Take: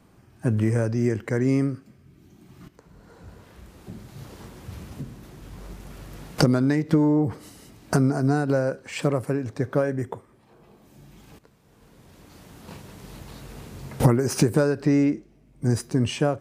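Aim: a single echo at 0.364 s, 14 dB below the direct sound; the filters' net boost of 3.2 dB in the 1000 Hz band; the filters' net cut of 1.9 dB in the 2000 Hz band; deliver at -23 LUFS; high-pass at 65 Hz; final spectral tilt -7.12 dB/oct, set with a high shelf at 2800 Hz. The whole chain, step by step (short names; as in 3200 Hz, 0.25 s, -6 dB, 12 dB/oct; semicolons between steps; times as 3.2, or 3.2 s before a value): HPF 65 Hz; bell 1000 Hz +6 dB; bell 2000 Hz -4 dB; high shelf 2800 Hz -4.5 dB; echo 0.364 s -14 dB; gain +0.5 dB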